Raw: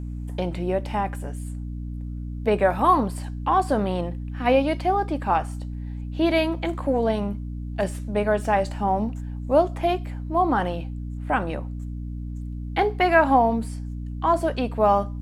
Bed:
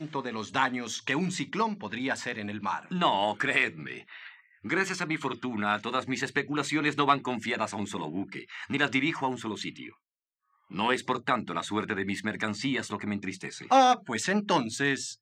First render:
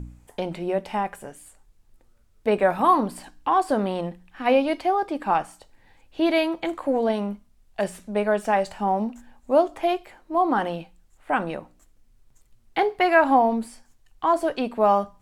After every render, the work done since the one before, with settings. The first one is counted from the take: de-hum 60 Hz, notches 5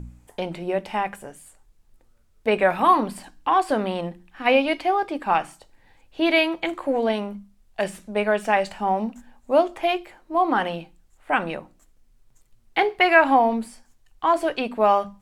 hum notches 50/100/150/200/250/300/350 Hz; dynamic bell 2.5 kHz, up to +8 dB, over -41 dBFS, Q 1.1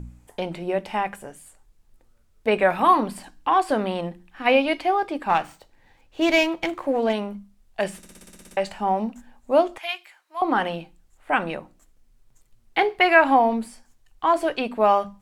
5.29–7.13 s: sliding maximum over 3 samples; 7.97 s: stutter in place 0.06 s, 10 plays; 9.78–10.42 s: high-pass 1.5 kHz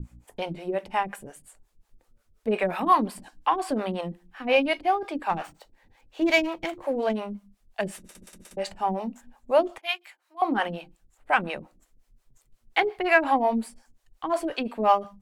harmonic tremolo 5.6 Hz, depth 100%, crossover 430 Hz; in parallel at -12 dB: saturation -18.5 dBFS, distortion -12 dB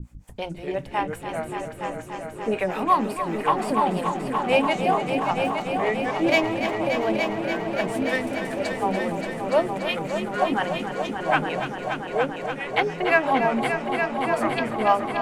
ever faster or slower copies 147 ms, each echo -4 st, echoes 3, each echo -6 dB; multi-head delay 289 ms, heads all three, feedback 72%, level -10.5 dB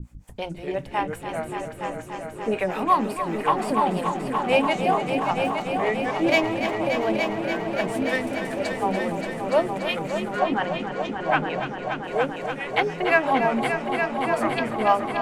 10.39–12.04 s: distance through air 84 m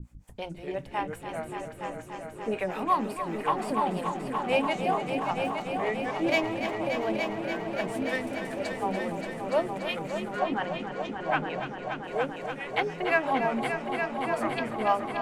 trim -5.5 dB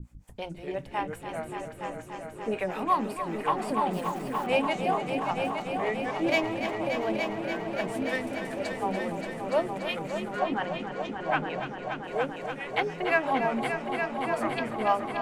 3.93–4.47 s: block-companded coder 5-bit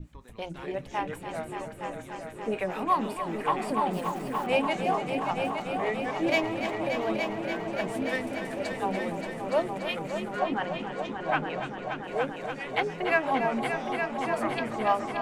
add bed -20.5 dB

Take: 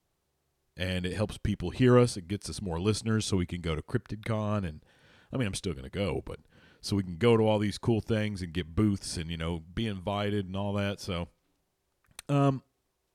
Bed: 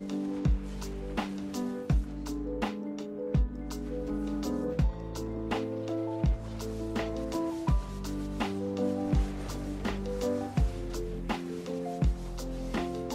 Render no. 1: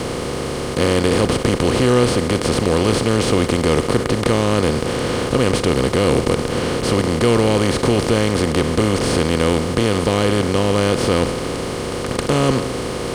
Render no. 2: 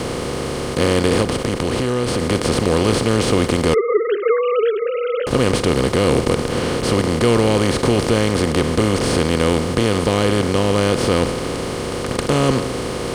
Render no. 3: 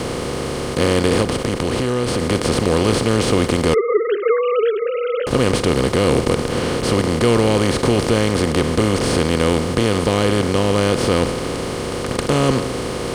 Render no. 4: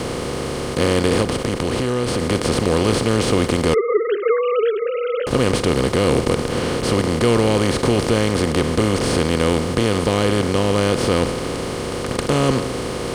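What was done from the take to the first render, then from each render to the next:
spectral levelling over time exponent 0.2; waveshaping leveller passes 1
1.22–2.20 s: compression, threshold -15 dBFS; 3.74–5.27 s: formants replaced by sine waves
no audible change
trim -1 dB

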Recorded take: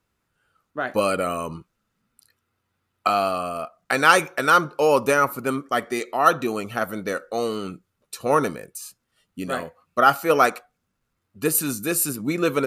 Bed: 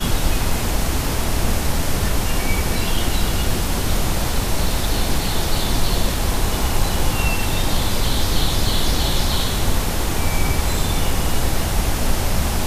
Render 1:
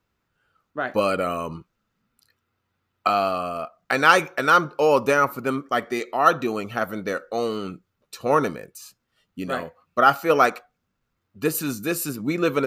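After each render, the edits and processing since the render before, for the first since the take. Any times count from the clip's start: peaking EQ 9.9 kHz -10 dB 0.78 oct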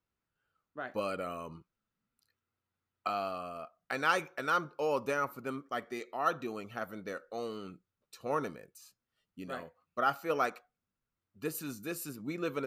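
trim -13.5 dB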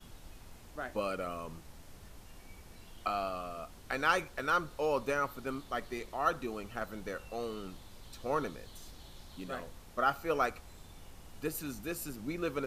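add bed -33 dB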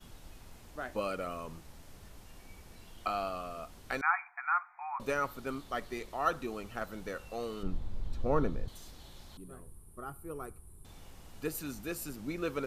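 4.01–5.00 s: brick-wall FIR band-pass 700–2500 Hz; 7.63–8.68 s: tilt EQ -3.5 dB/octave; 9.37–10.85 s: FFT filter 130 Hz 0 dB, 260 Hz -9 dB, 380 Hz -2 dB, 560 Hz -18 dB, 1.1 kHz -12 dB, 1.9 kHz -22 dB, 6.4 kHz -24 dB, 9.8 kHz +10 dB, 15 kHz -12 dB

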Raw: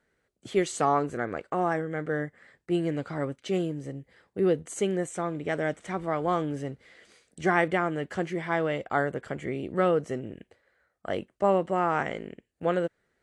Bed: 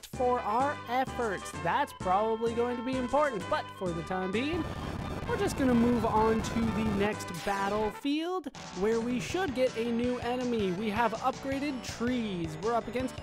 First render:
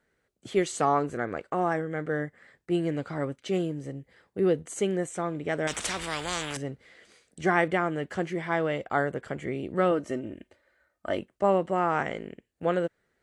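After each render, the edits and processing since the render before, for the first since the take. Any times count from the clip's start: 5.67–6.57 s: spectrum-flattening compressor 4:1; 9.91–11.19 s: comb 3.3 ms, depth 53%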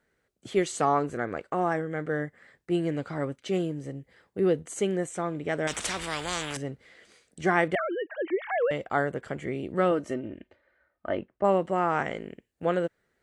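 7.75–8.71 s: formants replaced by sine waves; 10.13–11.43 s: low-pass 4.4 kHz -> 1.9 kHz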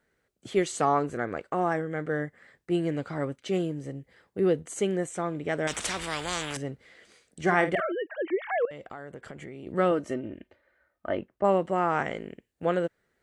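7.41–7.92 s: doubling 50 ms -10.5 dB; 8.65–9.67 s: compression, threshold -38 dBFS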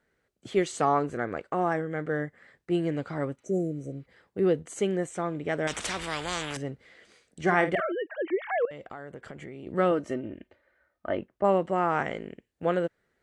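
3.41–4.03 s: spectral replace 740–5600 Hz before; treble shelf 9.2 kHz -8 dB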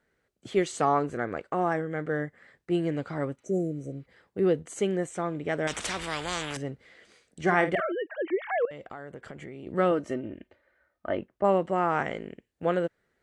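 no audible change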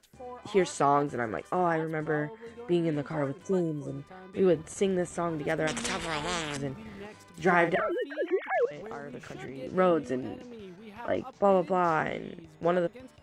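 add bed -15 dB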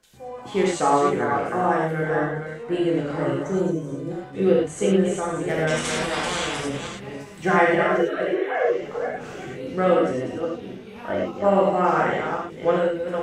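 chunks repeated in reverse 275 ms, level -6.5 dB; gated-style reverb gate 140 ms flat, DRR -4.5 dB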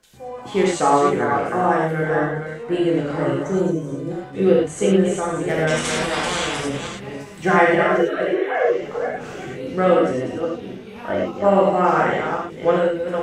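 trim +3 dB

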